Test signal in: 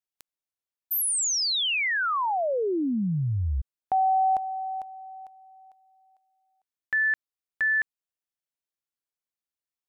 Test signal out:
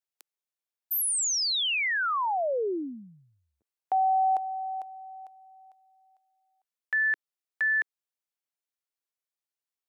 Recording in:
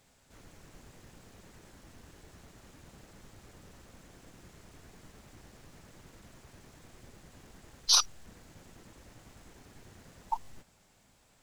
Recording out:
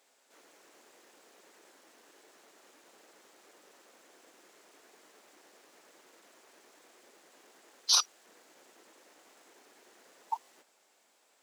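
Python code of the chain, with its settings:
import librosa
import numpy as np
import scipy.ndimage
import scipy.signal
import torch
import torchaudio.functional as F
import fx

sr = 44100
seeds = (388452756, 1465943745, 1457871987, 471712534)

y = scipy.signal.sosfilt(scipy.signal.butter(4, 340.0, 'highpass', fs=sr, output='sos'), x)
y = F.gain(torch.from_numpy(y), -1.5).numpy()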